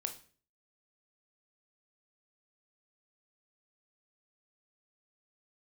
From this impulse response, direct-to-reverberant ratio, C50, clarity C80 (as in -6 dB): 5.5 dB, 12.0 dB, 16.5 dB